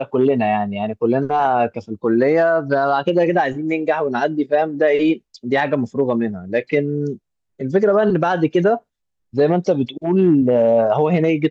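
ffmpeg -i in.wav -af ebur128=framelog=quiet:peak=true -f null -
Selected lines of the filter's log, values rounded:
Integrated loudness:
  I:         -18.0 LUFS
  Threshold: -28.2 LUFS
Loudness range:
  LRA:         2.6 LU
  Threshold: -38.5 LUFS
  LRA low:   -19.8 LUFS
  LRA high:  -17.2 LUFS
True peak:
  Peak:       -5.9 dBFS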